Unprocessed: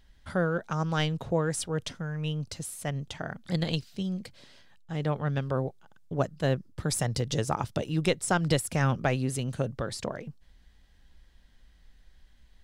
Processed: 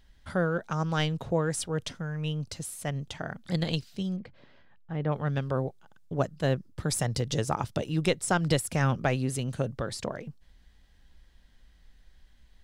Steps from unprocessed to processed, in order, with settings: 4.16–5.12 s: low-pass 2 kHz 12 dB/octave

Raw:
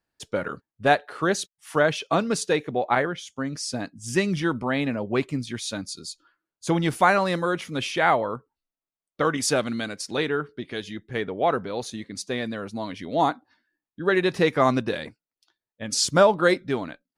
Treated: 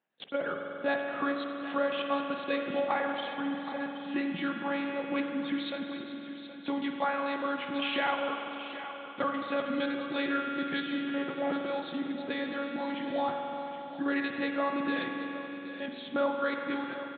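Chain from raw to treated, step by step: 10.97–11.67 s: one-bit delta coder 16 kbps, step -37.5 dBFS; compression, threshold -27 dBFS, peak gain reduction 14 dB; monotone LPC vocoder at 8 kHz 280 Hz; high-pass 170 Hz 24 dB/octave; band-stop 440 Hz, Q 12; delay 772 ms -12 dB; spring tank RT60 3.6 s, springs 46 ms, chirp 60 ms, DRR 2.5 dB

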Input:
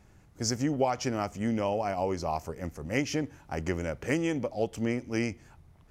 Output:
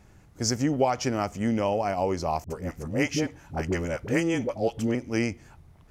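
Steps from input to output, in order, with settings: 2.44–4.95 s: phase dispersion highs, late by 61 ms, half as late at 470 Hz; trim +3.5 dB

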